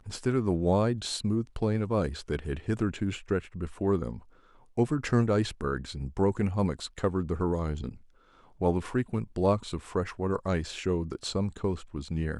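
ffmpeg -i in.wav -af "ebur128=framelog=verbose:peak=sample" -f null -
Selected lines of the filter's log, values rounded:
Integrated loudness:
  I:         -30.0 LUFS
  Threshold: -40.3 LUFS
Loudness range:
  LRA:         2.2 LU
  Threshold: -50.4 LUFS
  LRA low:   -31.4 LUFS
  LRA high:  -29.3 LUFS
Sample peak:
  Peak:      -11.1 dBFS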